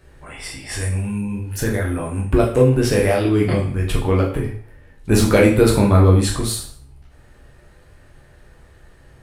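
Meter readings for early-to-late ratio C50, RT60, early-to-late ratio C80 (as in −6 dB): 7.0 dB, 0.50 s, 11.5 dB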